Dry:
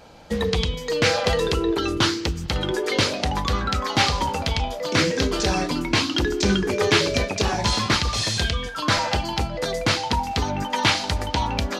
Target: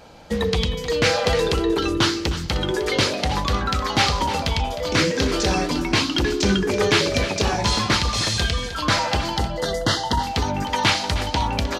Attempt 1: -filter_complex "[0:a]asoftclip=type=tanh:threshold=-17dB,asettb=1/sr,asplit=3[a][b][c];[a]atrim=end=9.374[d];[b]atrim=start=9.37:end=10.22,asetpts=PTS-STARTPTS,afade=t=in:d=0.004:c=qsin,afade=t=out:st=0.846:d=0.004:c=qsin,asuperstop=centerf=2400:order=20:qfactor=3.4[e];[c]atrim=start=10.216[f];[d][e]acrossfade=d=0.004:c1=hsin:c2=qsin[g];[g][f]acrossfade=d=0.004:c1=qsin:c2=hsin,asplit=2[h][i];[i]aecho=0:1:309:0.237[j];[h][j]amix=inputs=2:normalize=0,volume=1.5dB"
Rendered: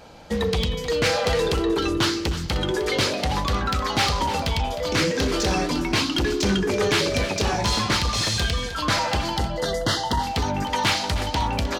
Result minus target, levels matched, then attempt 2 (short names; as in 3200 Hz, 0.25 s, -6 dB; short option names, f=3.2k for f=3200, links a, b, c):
soft clip: distortion +11 dB
-filter_complex "[0:a]asoftclip=type=tanh:threshold=-8.5dB,asettb=1/sr,asplit=3[a][b][c];[a]atrim=end=9.374[d];[b]atrim=start=9.37:end=10.22,asetpts=PTS-STARTPTS,afade=t=in:d=0.004:c=qsin,afade=t=out:st=0.846:d=0.004:c=qsin,asuperstop=centerf=2400:order=20:qfactor=3.4[e];[c]atrim=start=10.216[f];[d][e]acrossfade=d=0.004:c1=hsin:c2=qsin[g];[g][f]acrossfade=d=0.004:c1=qsin:c2=hsin,asplit=2[h][i];[i]aecho=0:1:309:0.237[j];[h][j]amix=inputs=2:normalize=0,volume=1.5dB"